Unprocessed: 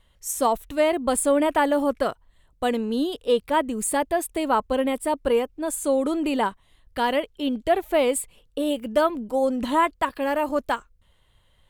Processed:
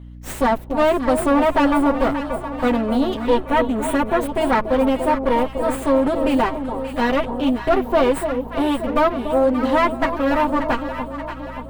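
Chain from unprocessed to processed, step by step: comb filter that takes the minimum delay 7.7 ms; on a send: echo whose repeats swap between lows and highs 290 ms, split 930 Hz, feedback 74%, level -8 dB; on the sum: sine folder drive 3 dB, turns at -9 dBFS; 3.40–4.20 s: peaking EQ 4.9 kHz -12 dB 0.22 oct; hum 60 Hz, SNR 19 dB; peaking EQ 9.8 kHz -12 dB 2.5 oct

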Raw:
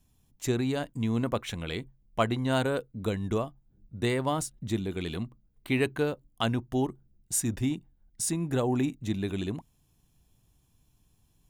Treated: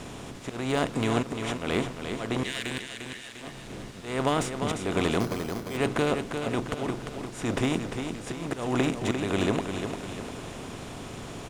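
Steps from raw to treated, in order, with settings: spectral levelling over time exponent 0.4; 2.43–3.42 s: elliptic high-pass 1.7 kHz; harmonic-percussive split harmonic -4 dB; slow attack 242 ms; word length cut 8-bit, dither triangular; distance through air 77 m; feedback delay 349 ms, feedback 51%, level -7 dB; 5.20–5.77 s: careless resampling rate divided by 8×, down filtered, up hold; slew-rate limiter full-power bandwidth 200 Hz; trim +1 dB

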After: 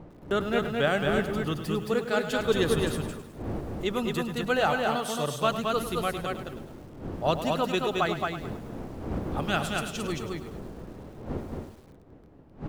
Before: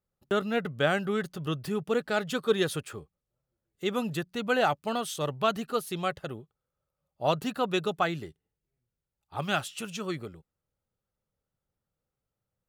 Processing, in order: wind noise 340 Hz -40 dBFS; delay 221 ms -3.5 dB; bit-crushed delay 104 ms, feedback 55%, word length 8-bit, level -11 dB

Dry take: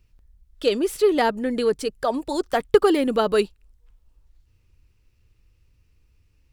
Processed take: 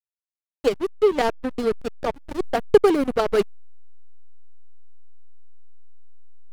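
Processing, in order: hysteresis with a dead band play -15 dBFS; trim +2 dB

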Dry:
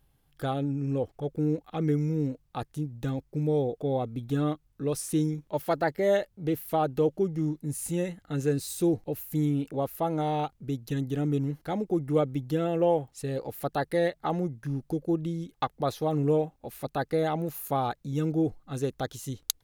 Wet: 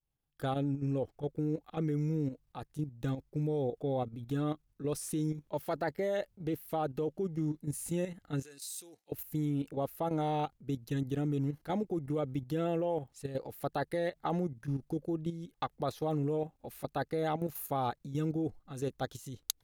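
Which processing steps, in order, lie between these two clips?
level held to a coarse grid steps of 10 dB; expander -60 dBFS; 8.42–9.12 s: band-pass filter 7.6 kHz, Q 0.51; trim -1.5 dB

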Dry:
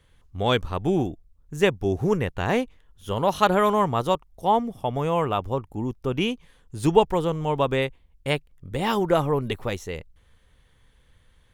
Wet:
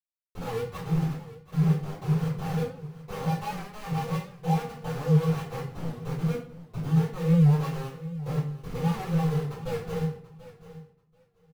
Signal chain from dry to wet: elliptic low-pass 1.1 kHz; bass shelf 170 Hz +4.5 dB; compression 16:1, threshold -33 dBFS, peak gain reduction 23.5 dB; feedback comb 160 Hz, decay 0.2 s, harmonics odd, mix 100%; small samples zeroed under -50.5 dBFS; feedback delay 734 ms, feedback 16%, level -16 dB; simulated room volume 58 m³, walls mixed, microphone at 3.5 m; warped record 78 rpm, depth 100 cents; trim +3.5 dB

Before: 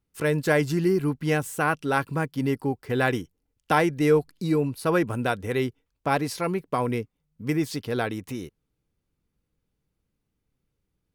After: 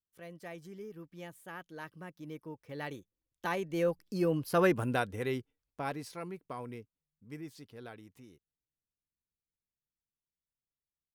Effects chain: Doppler pass-by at 4.65 s, 23 m/s, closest 9.5 m; pitch shift +1 st; trim -3.5 dB

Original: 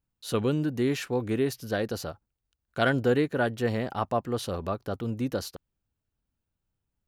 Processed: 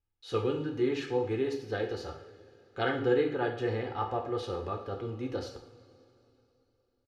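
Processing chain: low-pass 4.1 kHz 12 dB/octave; comb 2.4 ms, depth 67%; two-slope reverb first 0.53 s, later 3.3 s, from -19 dB, DRR 1.5 dB; trim -7 dB

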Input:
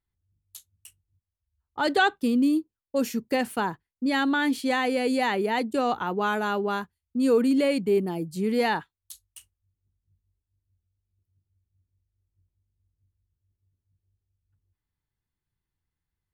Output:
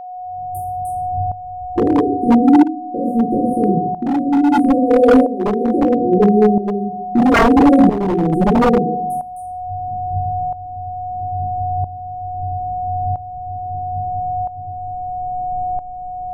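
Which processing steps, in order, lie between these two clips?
recorder AGC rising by 55 dB/s; distance through air 140 m; 1.93–3.60 s: compression 2.5:1, threshold -27 dBFS, peak gain reduction 7 dB; Chebyshev band-stop 490–9200 Hz, order 5; reverberation RT60 0.65 s, pre-delay 3 ms, DRR -9 dB; wavefolder -11.5 dBFS; whistle 730 Hz -26 dBFS; tremolo saw up 0.76 Hz, depth 75%; trim +8.5 dB

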